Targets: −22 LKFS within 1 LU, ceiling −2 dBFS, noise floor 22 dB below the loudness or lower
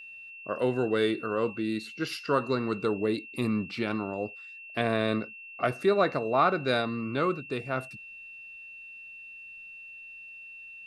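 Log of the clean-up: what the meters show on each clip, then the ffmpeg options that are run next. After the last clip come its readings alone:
interfering tone 2,700 Hz; level of the tone −43 dBFS; integrated loudness −29.0 LKFS; sample peak −11.5 dBFS; target loudness −22.0 LKFS
→ -af "bandreject=frequency=2700:width=30"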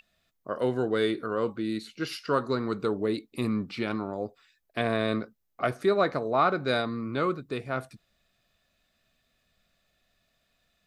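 interfering tone none found; integrated loudness −29.5 LKFS; sample peak −11.5 dBFS; target loudness −22.0 LKFS
→ -af "volume=7.5dB"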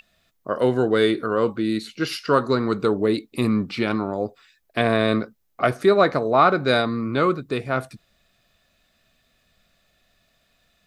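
integrated loudness −22.0 LKFS; sample peak −4.0 dBFS; background noise floor −68 dBFS

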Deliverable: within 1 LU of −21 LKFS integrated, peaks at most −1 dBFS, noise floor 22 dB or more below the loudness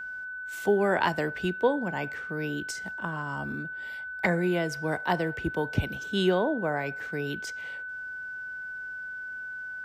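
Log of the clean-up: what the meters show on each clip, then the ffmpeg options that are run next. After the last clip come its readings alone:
interfering tone 1,500 Hz; level of the tone −35 dBFS; integrated loudness −30.0 LKFS; sample peak −11.5 dBFS; target loudness −21.0 LKFS
→ -af "bandreject=frequency=1500:width=30"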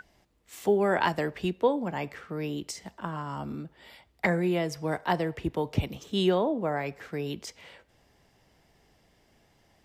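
interfering tone none found; integrated loudness −30.0 LKFS; sample peak −12.0 dBFS; target loudness −21.0 LKFS
→ -af "volume=9dB"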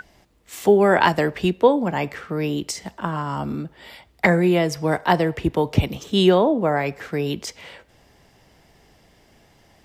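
integrated loudness −21.0 LKFS; sample peak −3.0 dBFS; background noise floor −57 dBFS

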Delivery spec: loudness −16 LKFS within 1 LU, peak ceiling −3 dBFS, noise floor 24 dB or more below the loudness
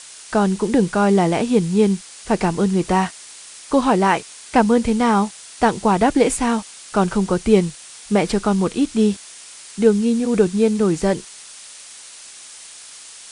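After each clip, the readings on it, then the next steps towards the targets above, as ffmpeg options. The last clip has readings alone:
background noise floor −40 dBFS; target noise floor −43 dBFS; integrated loudness −18.5 LKFS; sample peak −1.5 dBFS; target loudness −16.0 LKFS
→ -af "afftdn=noise_reduction=6:noise_floor=-40"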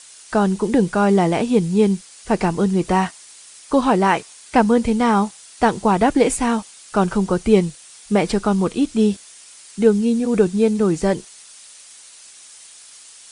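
background noise floor −44 dBFS; integrated loudness −18.5 LKFS; sample peak −1.5 dBFS; target loudness −16.0 LKFS
→ -af "volume=2.5dB,alimiter=limit=-3dB:level=0:latency=1"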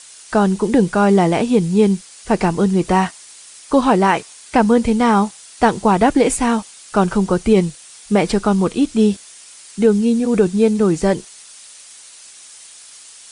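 integrated loudness −16.5 LKFS; sample peak −3.0 dBFS; background noise floor −41 dBFS

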